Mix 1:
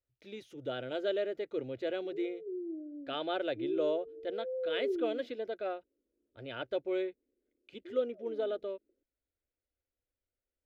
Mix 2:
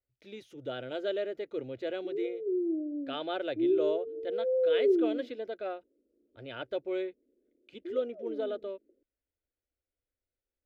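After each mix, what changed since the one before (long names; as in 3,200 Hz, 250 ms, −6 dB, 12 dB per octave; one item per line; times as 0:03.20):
background +9.0 dB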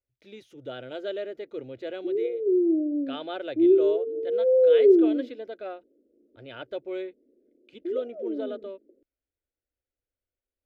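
background +8.5 dB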